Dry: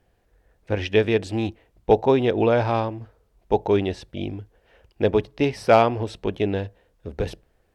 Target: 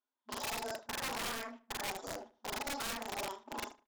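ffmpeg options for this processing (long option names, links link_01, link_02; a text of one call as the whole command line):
ffmpeg -i in.wav -filter_complex "[0:a]afftfilt=real='re':imag='-im':win_size=8192:overlap=0.75,agate=range=-23dB:threshold=-52dB:ratio=16:detection=peak,afftfilt=real='re*between(b*sr/4096,110,3800)':imag='im*between(b*sr/4096,110,3800)':win_size=4096:overlap=0.75,acompressor=threshold=-39dB:ratio=3,flanger=delay=6.4:depth=3.4:regen=-11:speed=1.8:shape=sinusoidal,aeval=exprs='(mod(63.1*val(0)+1,2)-1)/63.1':channel_layout=same,asplit=2[link_01][link_02];[link_02]adelay=153,lowpass=frequency=1900:poles=1,volume=-18.5dB,asplit=2[link_03][link_04];[link_04]adelay=153,lowpass=frequency=1900:poles=1,volume=0.3,asplit=2[link_05][link_06];[link_06]adelay=153,lowpass=frequency=1900:poles=1,volume=0.3[link_07];[link_03][link_05][link_07]amix=inputs=3:normalize=0[link_08];[link_01][link_08]amix=inputs=2:normalize=0,asetrate=88200,aresample=44100,volume=3.5dB" out.wav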